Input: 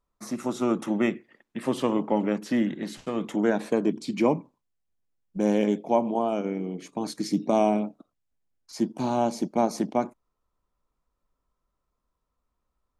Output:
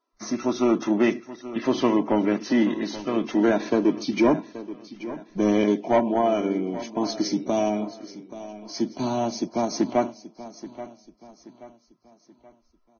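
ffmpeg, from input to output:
ffmpeg -i in.wav -filter_complex "[0:a]aecho=1:1:3:0.45,asettb=1/sr,asplit=3[link_01][link_02][link_03];[link_01]atrim=end=7.304[link_04];[link_02]atrim=start=7.3:end=9.72,asetpts=PTS-STARTPTS,afade=type=in:duration=0.004:curve=qsin,afade=type=out:start_time=2.416:duration=0.004:curve=qsin,acrossover=split=180|3000[link_05][link_06][link_07];[link_06]acompressor=threshold=-37dB:ratio=1.5[link_08];[link_05][link_08][link_07]amix=inputs=3:normalize=0[link_09];[link_03]atrim=start=9.716[link_10];[link_04][link_09]acrossfade=duration=0.004:curve1=hsin:curve2=qsin[link_11];[link_11][link_10]acrossfade=duration=0.004:curve1=qsin:curve2=hsin,asoftclip=type=tanh:threshold=-14.5dB,aecho=1:1:829|1658|2487|3316:0.178|0.0711|0.0285|0.0114,volume=4dB" -ar 16000 -c:a libvorbis -b:a 16k out.ogg

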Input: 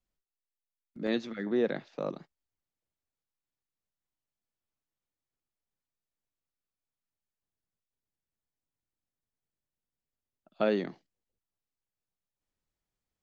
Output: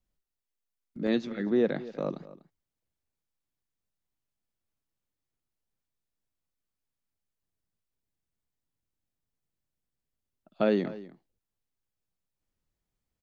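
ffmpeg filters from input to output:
ffmpeg -i in.wav -filter_complex "[0:a]lowshelf=frequency=340:gain=6.5,asplit=2[link_01][link_02];[link_02]adelay=244.9,volume=-17dB,highshelf=frequency=4000:gain=-5.51[link_03];[link_01][link_03]amix=inputs=2:normalize=0" out.wav

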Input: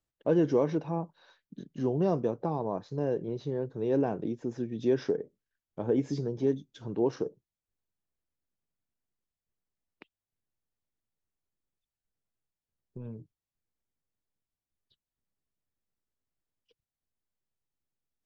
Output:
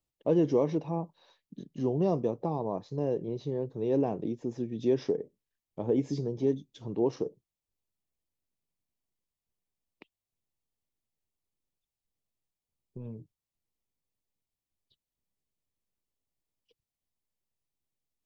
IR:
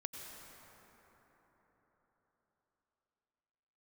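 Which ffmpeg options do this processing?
-af "equalizer=frequency=1500:width_type=o:width=0.37:gain=-13"

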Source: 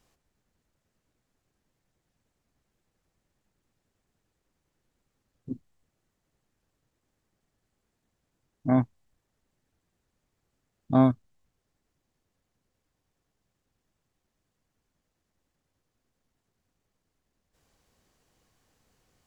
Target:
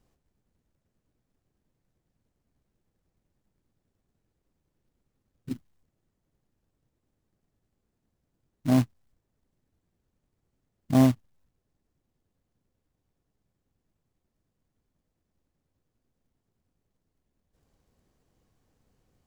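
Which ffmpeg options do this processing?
ffmpeg -i in.wav -af "tiltshelf=frequency=720:gain=5.5,acrusher=bits=4:mode=log:mix=0:aa=0.000001,volume=-3dB" out.wav

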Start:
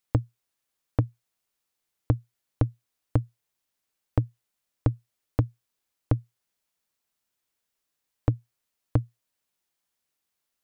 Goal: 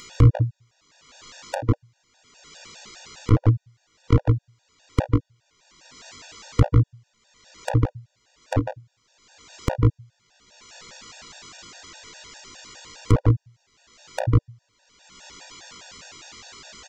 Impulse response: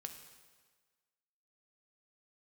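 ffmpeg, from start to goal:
-filter_complex "[0:a]atempo=0.63,asplit=2[link_01][link_02];[link_02]acompressor=threshold=-29dB:ratio=6,volume=-2.5dB[link_03];[link_01][link_03]amix=inputs=2:normalize=0,aresample=16000,aresample=44100,flanger=delay=18.5:depth=2.4:speed=0.29,asplit=2[link_04][link_05];[link_05]aecho=0:1:32.07|148.7:0.891|0.891[link_06];[link_04][link_06]amix=inputs=2:normalize=0,acompressor=mode=upward:threshold=-23dB:ratio=2.5,afftfilt=real='re*gt(sin(2*PI*4.9*pts/sr)*(1-2*mod(floor(b*sr/1024/480),2)),0)':imag='im*gt(sin(2*PI*4.9*pts/sr)*(1-2*mod(floor(b*sr/1024/480),2)),0)':win_size=1024:overlap=0.75,volume=7.5dB"

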